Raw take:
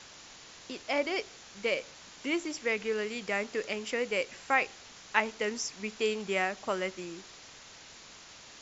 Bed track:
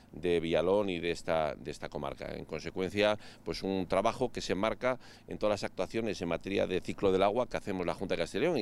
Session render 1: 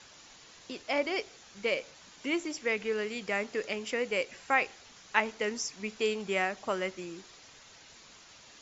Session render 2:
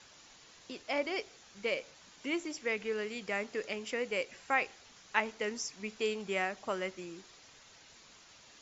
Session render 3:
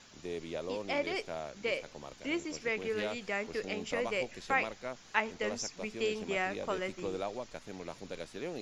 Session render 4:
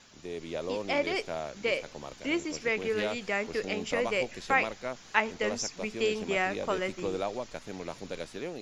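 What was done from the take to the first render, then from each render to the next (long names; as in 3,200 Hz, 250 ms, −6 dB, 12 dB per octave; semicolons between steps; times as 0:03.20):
broadband denoise 6 dB, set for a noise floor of −52 dBFS
level −3.5 dB
mix in bed track −10 dB
automatic gain control gain up to 4.5 dB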